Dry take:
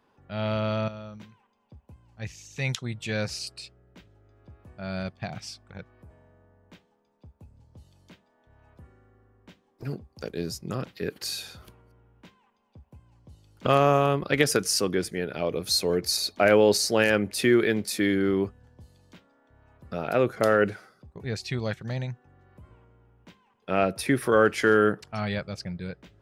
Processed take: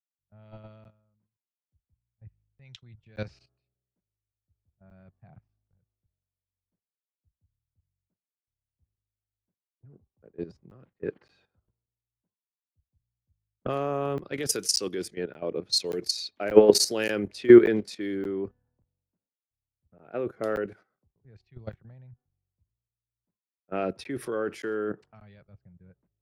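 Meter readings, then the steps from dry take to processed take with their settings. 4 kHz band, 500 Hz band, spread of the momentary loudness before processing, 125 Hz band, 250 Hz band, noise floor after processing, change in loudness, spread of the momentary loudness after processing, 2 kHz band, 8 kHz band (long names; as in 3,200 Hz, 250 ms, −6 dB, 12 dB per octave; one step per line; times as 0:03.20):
−2.0 dB, −1.0 dB, 18 LU, −10.0 dB, 0.0 dB, below −85 dBFS, +0.5 dB, 22 LU, −10.0 dB, −1.5 dB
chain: dynamic equaliser 360 Hz, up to +7 dB, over −36 dBFS, Q 1.5
low-pass that shuts in the quiet parts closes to 790 Hz, open at −17.5 dBFS
parametric band 67 Hz −9 dB 0.6 octaves
output level in coarse steps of 13 dB
regular buffer underruns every 0.58 s, samples 512, zero, from 0:00.84
multiband upward and downward expander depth 100%
level −4.5 dB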